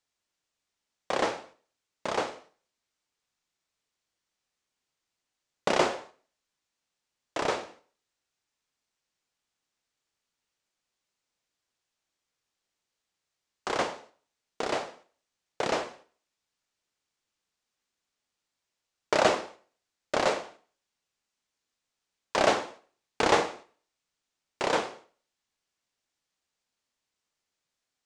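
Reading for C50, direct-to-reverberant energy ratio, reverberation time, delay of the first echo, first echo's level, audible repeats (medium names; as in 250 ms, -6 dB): 16.5 dB, 11.0 dB, 0.45 s, no echo, no echo, no echo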